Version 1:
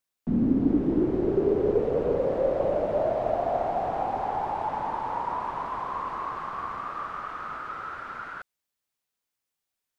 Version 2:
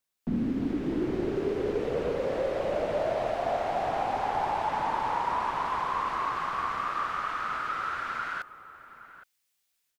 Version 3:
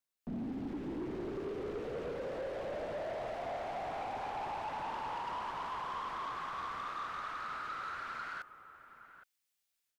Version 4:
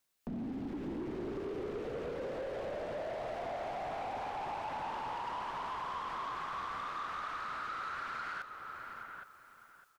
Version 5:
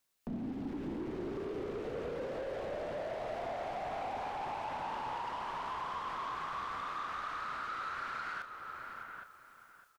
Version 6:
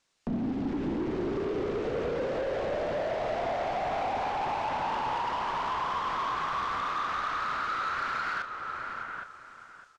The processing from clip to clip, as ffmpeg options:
-filter_complex "[0:a]acrossover=split=1600[a][b];[a]alimiter=limit=-21dB:level=0:latency=1:release=250[c];[b]dynaudnorm=f=190:g=3:m=9dB[d];[c][d]amix=inputs=2:normalize=0,asplit=2[e][f];[f]adelay=816.3,volume=-14dB,highshelf=f=4k:g=-18.4[g];[e][g]amix=inputs=2:normalize=0"
-af "asoftclip=type=tanh:threshold=-27.5dB,volume=-7dB"
-filter_complex "[0:a]alimiter=level_in=17.5dB:limit=-24dB:level=0:latency=1:release=389,volume=-17.5dB,acompressor=threshold=-49dB:ratio=2,asplit=2[a][b];[b]aecho=0:1:606|1212|1818:0.251|0.0578|0.0133[c];[a][c]amix=inputs=2:normalize=0,volume=9.5dB"
-filter_complex "[0:a]asplit=2[a][b];[b]adelay=32,volume=-11.5dB[c];[a][c]amix=inputs=2:normalize=0"
-filter_complex "[0:a]lowpass=f=7.3k:w=0.5412,lowpass=f=7.3k:w=1.3066,asplit=2[a][b];[b]asoftclip=type=hard:threshold=-40dB,volume=-10dB[c];[a][c]amix=inputs=2:normalize=0,volume=6.5dB"

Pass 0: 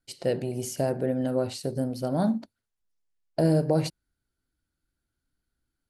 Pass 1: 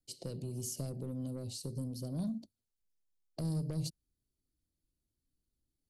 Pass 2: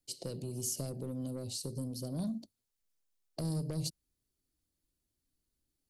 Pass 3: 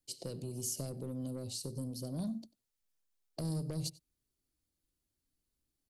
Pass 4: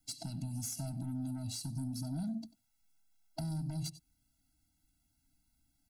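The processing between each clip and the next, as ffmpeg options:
-filter_complex "[0:a]acrossover=split=680|3200[a][b][c];[b]acrusher=bits=3:mix=0:aa=0.5[d];[a][d][c]amix=inputs=3:normalize=0,asoftclip=type=tanh:threshold=-21.5dB,acrossover=split=190|3000[e][f][g];[f]acompressor=threshold=-41dB:ratio=10[h];[e][h][g]amix=inputs=3:normalize=0,volume=-3.5dB"
-af "bass=f=250:g=-4,treble=f=4k:g=2,volume=3dB"
-filter_complex "[0:a]asplit=2[a][b];[b]adelay=93.29,volume=-21dB,highshelf=f=4k:g=-2.1[c];[a][c]amix=inputs=2:normalize=0,volume=-1.5dB"
-af "asoftclip=type=tanh:threshold=-34.5dB,acompressor=threshold=-46dB:ratio=6,afftfilt=real='re*eq(mod(floor(b*sr/1024/320),2),0)':imag='im*eq(mod(floor(b*sr/1024/320),2),0)':win_size=1024:overlap=0.75,volume=10.5dB"

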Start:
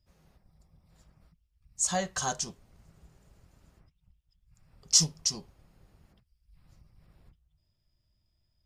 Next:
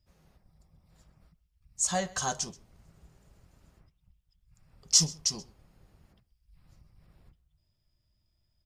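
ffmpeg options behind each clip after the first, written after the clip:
-af "aecho=1:1:129:0.0794"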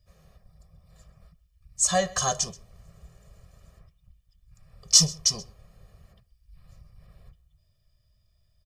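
-af "aecho=1:1:1.7:0.79,volume=3.5dB"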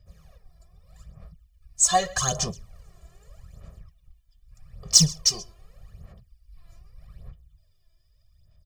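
-filter_complex "[0:a]asplit=2[a][b];[b]asoftclip=type=hard:threshold=-16dB,volume=-6dB[c];[a][c]amix=inputs=2:normalize=0,aphaser=in_gain=1:out_gain=1:delay=3:decay=0.68:speed=0.82:type=sinusoidal,volume=-4.5dB"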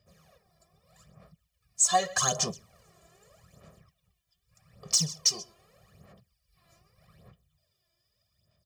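-af "highpass=180,alimiter=limit=-12.5dB:level=0:latency=1:release=265"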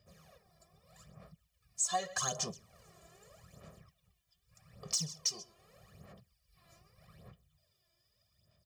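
-af "acompressor=threshold=-47dB:ratio=1.5"

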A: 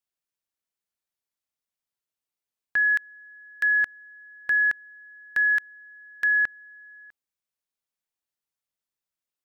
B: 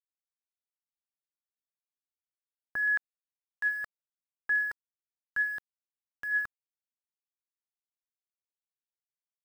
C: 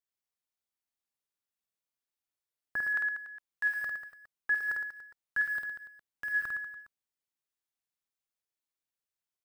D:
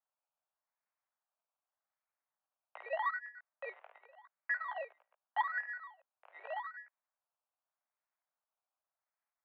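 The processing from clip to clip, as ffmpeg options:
-af "highshelf=f=1.7k:t=q:w=1.5:g=-9,aphaser=in_gain=1:out_gain=1:delay=2.4:decay=0.54:speed=0.34:type=sinusoidal,aeval=exprs='val(0)*gte(abs(val(0)),0.0119)':c=same,volume=-7dB"
-af "aecho=1:1:50|112.5|190.6|288.3|410.4:0.631|0.398|0.251|0.158|0.1"
-af "flanger=delay=15:depth=6.3:speed=0.43,acrusher=samples=20:mix=1:aa=0.000001:lfo=1:lforange=12:lforate=0.84,highpass=f=370:t=q:w=0.5412,highpass=f=370:t=q:w=1.307,lowpass=f=2.5k:t=q:w=0.5176,lowpass=f=2.5k:t=q:w=0.7071,lowpass=f=2.5k:t=q:w=1.932,afreqshift=230"

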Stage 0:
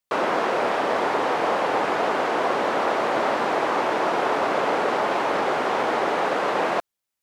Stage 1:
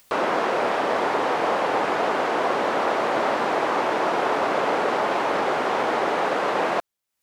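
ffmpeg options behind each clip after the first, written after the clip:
-af "acompressor=mode=upward:threshold=-35dB:ratio=2.5"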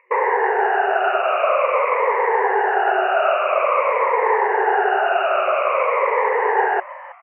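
-filter_complex "[0:a]afftfilt=real='re*pow(10,22/40*sin(2*PI*(0.97*log(max(b,1)*sr/1024/100)/log(2)-(-0.49)*(pts-256)/sr)))':imag='im*pow(10,22/40*sin(2*PI*(0.97*log(max(b,1)*sr/1024/100)/log(2)-(-0.49)*(pts-256)/sr)))':win_size=1024:overlap=0.75,afftfilt=real='re*between(b*sr/4096,370,2900)':imag='im*between(b*sr/4096,370,2900)':win_size=4096:overlap=0.75,asplit=4[a][b][c][d];[b]adelay=321,afreqshift=140,volume=-18dB[e];[c]adelay=642,afreqshift=280,volume=-27.6dB[f];[d]adelay=963,afreqshift=420,volume=-37.3dB[g];[a][e][f][g]amix=inputs=4:normalize=0"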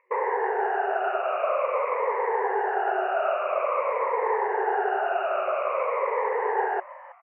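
-af "highshelf=f=2.1k:g=-11,volume=-6dB"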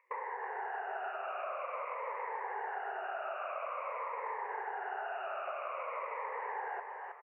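-af "highpass=760,acompressor=threshold=-35dB:ratio=5,aecho=1:1:317|634|951|1268:0.447|0.147|0.0486|0.0161,volume=-3dB"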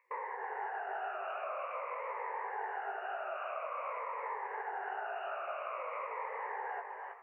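-af "flanger=delay=17:depth=3.5:speed=2.8,volume=2.5dB"

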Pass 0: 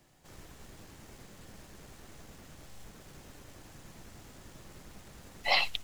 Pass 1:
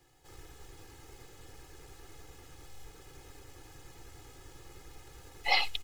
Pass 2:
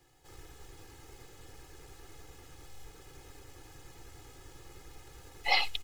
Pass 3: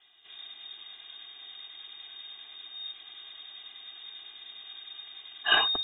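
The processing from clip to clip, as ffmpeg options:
-af "aecho=1:1:2.4:0.93,volume=-3.5dB"
-af anull
-af "lowpass=f=3.1k:t=q:w=0.5098,lowpass=f=3.1k:t=q:w=0.6013,lowpass=f=3.1k:t=q:w=0.9,lowpass=f=3.1k:t=q:w=2.563,afreqshift=-3700,bandreject=f=50:t=h:w=6,bandreject=f=100:t=h:w=6,volume=4.5dB"

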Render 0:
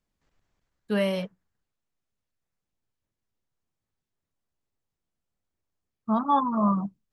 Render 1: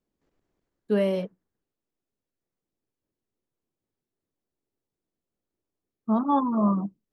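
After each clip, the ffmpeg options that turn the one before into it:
-af "equalizer=f=350:t=o:w=1.8:g=13.5,volume=-6.5dB"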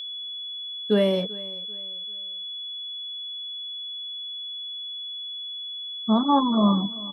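-af "aecho=1:1:390|780|1170:0.0944|0.033|0.0116,aeval=exprs='val(0)+0.0178*sin(2*PI*3400*n/s)':c=same,volume=3dB"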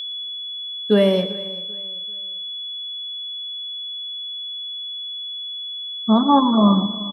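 -af "aecho=1:1:117|234|351|468|585:0.178|0.0942|0.05|0.0265|0.014,volume=5dB"

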